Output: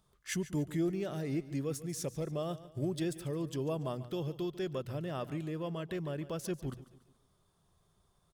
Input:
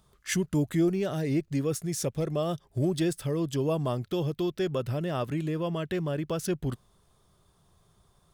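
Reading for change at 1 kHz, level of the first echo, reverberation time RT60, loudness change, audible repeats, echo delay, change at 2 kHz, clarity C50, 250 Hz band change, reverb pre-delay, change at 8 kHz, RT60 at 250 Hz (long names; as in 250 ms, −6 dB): −7.5 dB, −16.0 dB, no reverb audible, −7.5 dB, 3, 143 ms, −7.5 dB, no reverb audible, −7.5 dB, no reverb audible, −7.5 dB, no reverb audible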